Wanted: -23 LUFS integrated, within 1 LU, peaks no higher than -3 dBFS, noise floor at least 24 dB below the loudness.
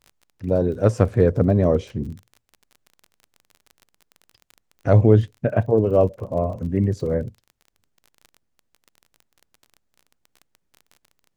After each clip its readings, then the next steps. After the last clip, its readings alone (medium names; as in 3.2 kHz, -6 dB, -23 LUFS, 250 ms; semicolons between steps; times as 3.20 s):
tick rate 26 per s; loudness -20.5 LUFS; peak level -1.5 dBFS; loudness target -23.0 LUFS
-> de-click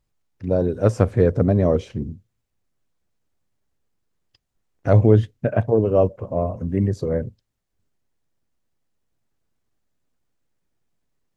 tick rate 0 per s; loudness -20.0 LUFS; peak level -1.5 dBFS; loudness target -23.0 LUFS
-> trim -3 dB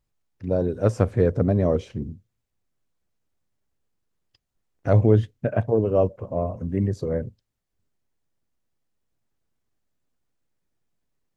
loudness -23.0 LUFS; peak level -4.5 dBFS; noise floor -79 dBFS